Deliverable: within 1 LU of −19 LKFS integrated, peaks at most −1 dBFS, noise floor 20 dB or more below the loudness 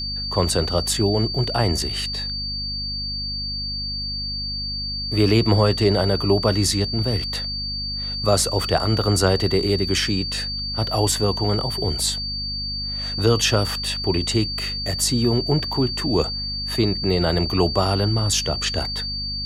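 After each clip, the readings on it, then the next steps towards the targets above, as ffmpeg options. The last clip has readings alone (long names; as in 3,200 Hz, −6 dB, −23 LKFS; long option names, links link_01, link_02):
mains hum 50 Hz; hum harmonics up to 250 Hz; level of the hum −30 dBFS; interfering tone 4,600 Hz; level of the tone −26 dBFS; integrated loudness −21.5 LKFS; sample peak −4.5 dBFS; target loudness −19.0 LKFS
→ -af "bandreject=frequency=50:width_type=h:width=6,bandreject=frequency=100:width_type=h:width=6,bandreject=frequency=150:width_type=h:width=6,bandreject=frequency=200:width_type=h:width=6,bandreject=frequency=250:width_type=h:width=6"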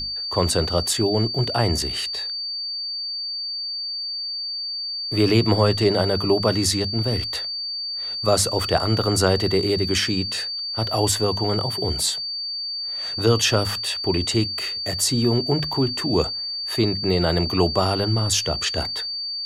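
mains hum none found; interfering tone 4,600 Hz; level of the tone −26 dBFS
→ -af "bandreject=frequency=4600:width=30"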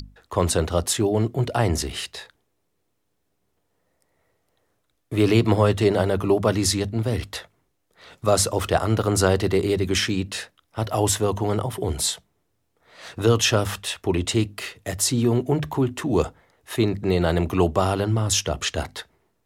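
interfering tone none found; integrated loudness −22.5 LKFS; sample peak −5.0 dBFS; target loudness −19.0 LKFS
→ -af "volume=3.5dB"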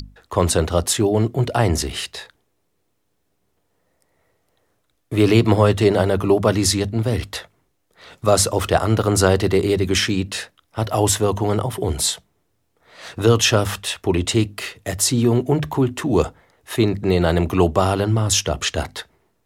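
integrated loudness −19.0 LKFS; sample peak −1.5 dBFS; background noise floor −69 dBFS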